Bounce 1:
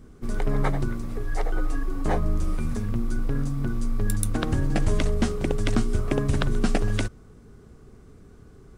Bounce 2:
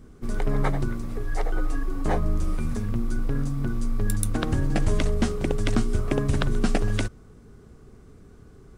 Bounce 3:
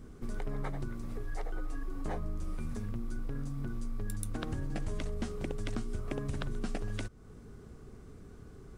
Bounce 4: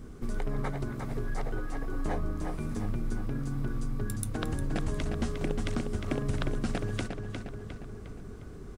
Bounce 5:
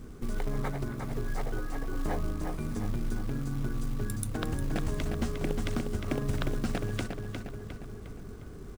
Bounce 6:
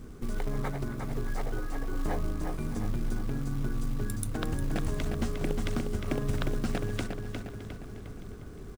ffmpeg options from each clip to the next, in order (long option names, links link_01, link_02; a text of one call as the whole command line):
ffmpeg -i in.wav -af anull out.wav
ffmpeg -i in.wav -af "acompressor=threshold=-36dB:ratio=2.5,volume=-1.5dB" out.wav
ffmpeg -i in.wav -filter_complex "[0:a]asplit=2[link_01][link_02];[link_02]adelay=356,lowpass=frequency=4700:poles=1,volume=-5dB,asplit=2[link_03][link_04];[link_04]adelay=356,lowpass=frequency=4700:poles=1,volume=0.53,asplit=2[link_05][link_06];[link_06]adelay=356,lowpass=frequency=4700:poles=1,volume=0.53,asplit=2[link_07][link_08];[link_08]adelay=356,lowpass=frequency=4700:poles=1,volume=0.53,asplit=2[link_09][link_10];[link_10]adelay=356,lowpass=frequency=4700:poles=1,volume=0.53,asplit=2[link_11][link_12];[link_12]adelay=356,lowpass=frequency=4700:poles=1,volume=0.53,asplit=2[link_13][link_14];[link_14]adelay=356,lowpass=frequency=4700:poles=1,volume=0.53[link_15];[link_01][link_03][link_05][link_07][link_09][link_11][link_13][link_15]amix=inputs=8:normalize=0,volume=4.5dB" out.wav
ffmpeg -i in.wav -af "acrusher=bits=6:mode=log:mix=0:aa=0.000001" out.wav
ffmpeg -i in.wav -af "aecho=1:1:615|1230|1845|2460:0.133|0.068|0.0347|0.0177" out.wav